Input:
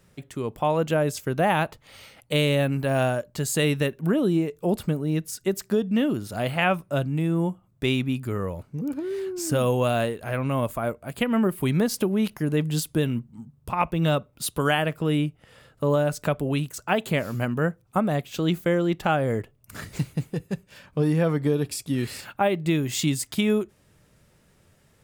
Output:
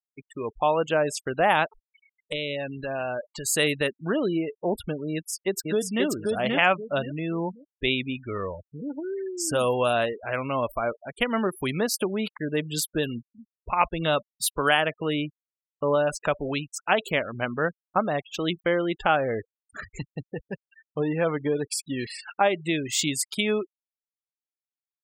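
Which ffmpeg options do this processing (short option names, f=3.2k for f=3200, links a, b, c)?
-filter_complex "[0:a]asettb=1/sr,asplit=3[a][b][c];[a]atrim=end=1.644[d];[b]atrim=start=1.64:end=3.49,asetpts=PTS-STARTPTS,afade=t=in:d=0.004:c=qsin,afade=t=out:st=1.846:d=0.004:c=qsin,acompressor=threshold=-25dB:ratio=12:attack=3.2:release=140:knee=1:detection=peak[e];[c]atrim=start=3.486[f];[d][e]acrossfade=d=0.004:c1=hsin:c2=qsin[g];[g][f]acrossfade=d=0.004:c1=qsin:c2=hsin,asplit=2[h][i];[i]afade=t=in:st=5.12:d=0.01,afade=t=out:st=6.05:d=0.01,aecho=0:1:530|1060|1590|2120:0.794328|0.238298|0.0714895|0.0214469[j];[h][j]amix=inputs=2:normalize=0,equalizer=f=130:t=o:w=2.5:g=-14.5,afftfilt=real='re*gte(hypot(re,im),0.0178)':imag='im*gte(hypot(re,im),0.0178)':win_size=1024:overlap=0.75,lowshelf=f=68:g=7.5,volume=3.5dB"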